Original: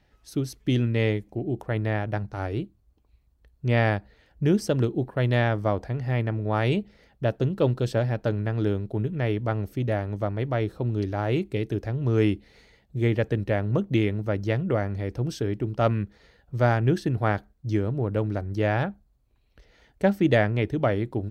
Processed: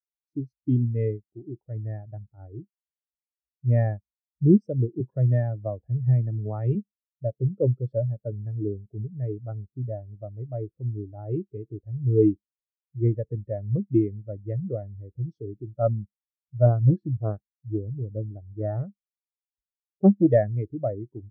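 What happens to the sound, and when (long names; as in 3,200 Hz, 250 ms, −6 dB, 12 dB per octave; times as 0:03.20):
0:05.00–0:06.75: multiband upward and downward compressor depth 70%
0:16.66–0:20.31: highs frequency-modulated by the lows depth 0.61 ms
whole clip: low-shelf EQ 85 Hz −3 dB; notch filter 1,600 Hz, Q 24; every bin expanded away from the loudest bin 2.5 to 1; level +2 dB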